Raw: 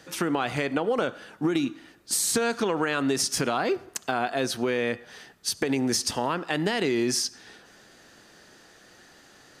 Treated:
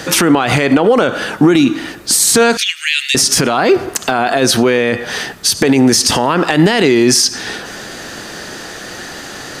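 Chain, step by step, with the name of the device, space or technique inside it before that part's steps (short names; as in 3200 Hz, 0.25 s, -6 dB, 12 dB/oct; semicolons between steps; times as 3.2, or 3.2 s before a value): 2.57–3.15 steep high-pass 2100 Hz 48 dB/oct; loud club master (compressor 2.5:1, threshold -28 dBFS, peak gain reduction 5.5 dB; hard clip -17 dBFS, distortion -35 dB; maximiser +26 dB); gain -1 dB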